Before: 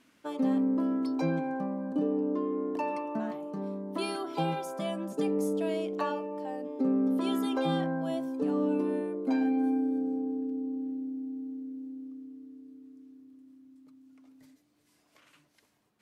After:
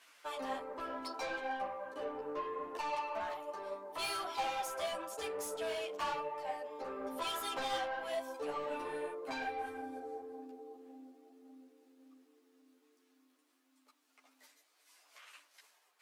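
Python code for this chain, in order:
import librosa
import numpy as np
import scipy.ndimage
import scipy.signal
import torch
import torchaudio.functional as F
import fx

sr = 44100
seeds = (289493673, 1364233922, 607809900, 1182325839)

y = scipy.signal.sosfilt(scipy.signal.bessel(4, 840.0, 'highpass', norm='mag', fs=sr, output='sos'), x)
y = 10.0 ** (-40.0 / 20.0) * np.tanh(y / 10.0 ** (-40.0 / 20.0))
y = fx.ensemble(y, sr)
y = F.gain(torch.from_numpy(y), 9.0).numpy()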